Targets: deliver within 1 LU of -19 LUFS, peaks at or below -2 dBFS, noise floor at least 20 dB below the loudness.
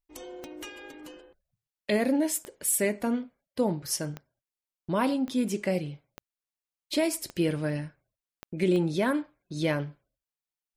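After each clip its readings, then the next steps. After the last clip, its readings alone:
clicks 8; loudness -29.0 LUFS; peak -15.0 dBFS; loudness target -19.0 LUFS
-> de-click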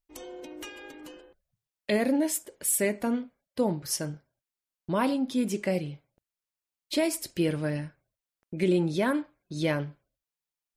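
clicks 0; loudness -28.5 LUFS; peak -15.0 dBFS; loudness target -19.0 LUFS
-> gain +9.5 dB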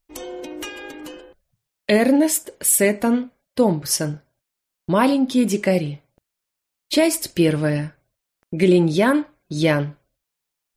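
loudness -19.5 LUFS; peak -5.5 dBFS; noise floor -82 dBFS

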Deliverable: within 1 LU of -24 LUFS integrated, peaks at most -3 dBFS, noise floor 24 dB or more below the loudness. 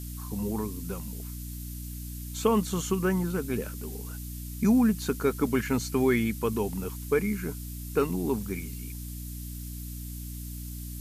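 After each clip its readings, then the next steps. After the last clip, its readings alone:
hum 60 Hz; harmonics up to 300 Hz; hum level -36 dBFS; noise floor -38 dBFS; noise floor target -54 dBFS; loudness -30.0 LUFS; peak -12.0 dBFS; loudness target -24.0 LUFS
-> de-hum 60 Hz, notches 5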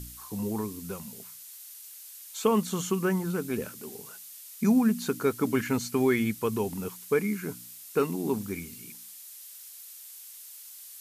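hum none; noise floor -47 dBFS; noise floor target -53 dBFS
-> denoiser 6 dB, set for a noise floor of -47 dBFS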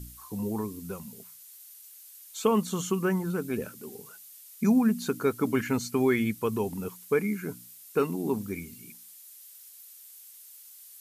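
noise floor -50 dBFS; noise floor target -53 dBFS
-> denoiser 6 dB, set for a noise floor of -50 dBFS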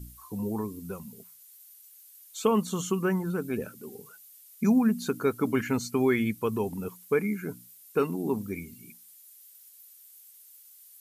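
noise floor -54 dBFS; loudness -29.0 LUFS; peak -12.0 dBFS; loudness target -24.0 LUFS
-> gain +5 dB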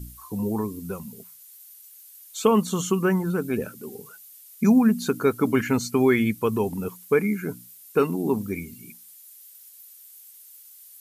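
loudness -24.0 LUFS; peak -7.0 dBFS; noise floor -49 dBFS

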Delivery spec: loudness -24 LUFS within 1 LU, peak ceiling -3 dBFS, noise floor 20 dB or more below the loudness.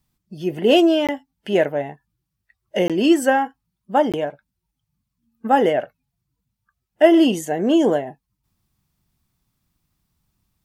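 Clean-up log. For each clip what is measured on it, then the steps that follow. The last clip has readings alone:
dropouts 3; longest dropout 17 ms; loudness -19.0 LUFS; peak -1.0 dBFS; loudness target -24.0 LUFS
-> interpolate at 1.07/2.88/4.12, 17 ms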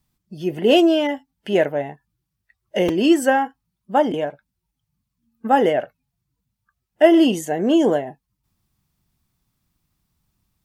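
dropouts 0; loudness -19.0 LUFS; peak -1.0 dBFS; loudness target -24.0 LUFS
-> gain -5 dB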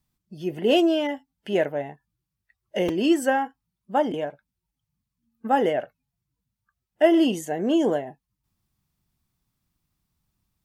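loudness -24.0 LUFS; peak -6.0 dBFS; noise floor -84 dBFS

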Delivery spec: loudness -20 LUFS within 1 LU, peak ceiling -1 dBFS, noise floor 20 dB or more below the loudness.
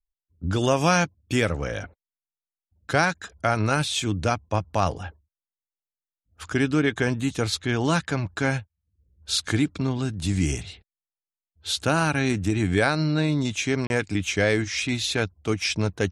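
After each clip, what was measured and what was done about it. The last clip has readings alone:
dropouts 1; longest dropout 31 ms; loudness -24.5 LUFS; peak -6.0 dBFS; loudness target -20.0 LUFS
-> interpolate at 13.87, 31 ms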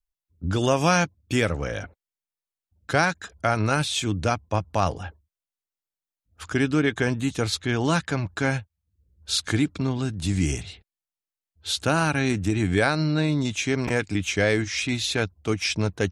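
dropouts 0; loudness -24.5 LUFS; peak -6.0 dBFS; loudness target -20.0 LUFS
-> gain +4.5 dB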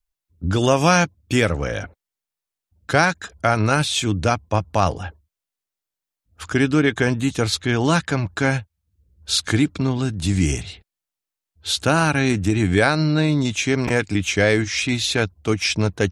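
loudness -20.0 LUFS; peak -1.5 dBFS; noise floor -87 dBFS

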